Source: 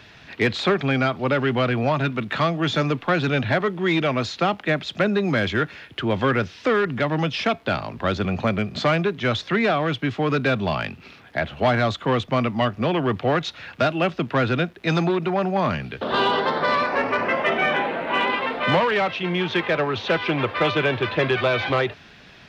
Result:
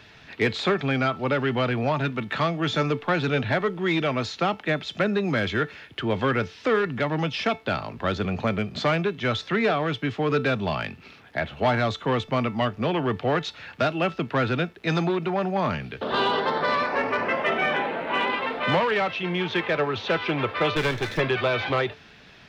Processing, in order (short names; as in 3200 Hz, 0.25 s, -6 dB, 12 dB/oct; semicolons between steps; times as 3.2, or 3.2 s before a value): 20.76–21.2 minimum comb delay 0.53 ms; resonator 440 Hz, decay 0.28 s, harmonics all, mix 60%; gain +4.5 dB